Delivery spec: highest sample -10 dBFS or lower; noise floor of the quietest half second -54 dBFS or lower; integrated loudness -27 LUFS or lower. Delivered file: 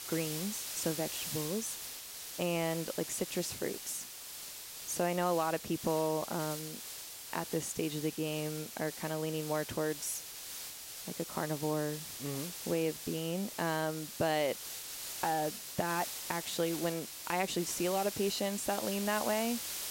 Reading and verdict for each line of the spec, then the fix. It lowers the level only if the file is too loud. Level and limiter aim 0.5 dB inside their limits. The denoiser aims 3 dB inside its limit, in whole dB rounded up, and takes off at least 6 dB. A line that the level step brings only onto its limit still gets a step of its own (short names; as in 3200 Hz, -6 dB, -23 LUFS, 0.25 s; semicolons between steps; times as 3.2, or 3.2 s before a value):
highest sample -18.5 dBFS: OK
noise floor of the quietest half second -46 dBFS: fail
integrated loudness -35.5 LUFS: OK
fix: denoiser 11 dB, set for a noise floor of -46 dBFS